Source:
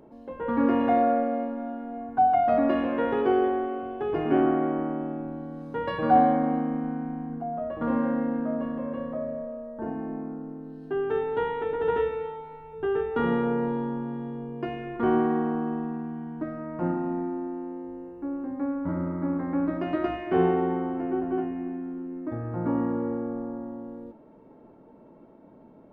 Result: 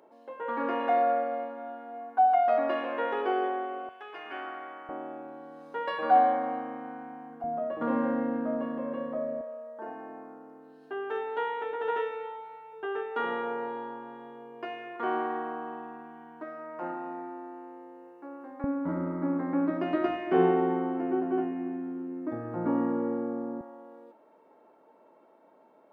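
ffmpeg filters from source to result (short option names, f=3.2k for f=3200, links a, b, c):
-af "asetnsamples=n=441:p=0,asendcmd='3.89 highpass f 1400;4.89 highpass f 560;7.44 highpass f 250;9.41 highpass f 610;18.64 highpass f 200;23.61 highpass f 620',highpass=570"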